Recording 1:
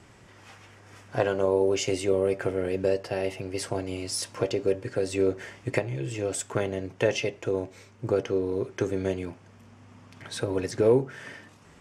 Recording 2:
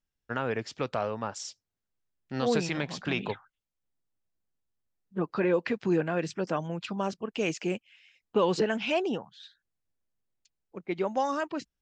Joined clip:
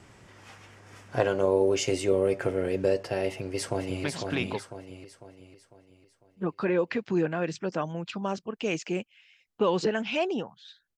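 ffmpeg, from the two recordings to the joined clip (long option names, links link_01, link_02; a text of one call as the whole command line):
ffmpeg -i cue0.wav -i cue1.wav -filter_complex "[0:a]apad=whole_dur=10.97,atrim=end=10.97,atrim=end=4.042[link_01];[1:a]atrim=start=2.788:end=9.72[link_02];[link_01][link_02]acrossfade=duration=0.004:curve1=hsin:curve2=hsin,asplit=2[link_03][link_04];[link_04]afade=type=in:start_time=3.29:duration=0.01,afade=type=out:start_time=4.04:duration=0.01,aecho=0:1:500|1000|1500|2000|2500|3000:0.562341|0.253054|0.113874|0.0512434|0.0230595|0.0103768[link_05];[link_03][link_05]amix=inputs=2:normalize=0" out.wav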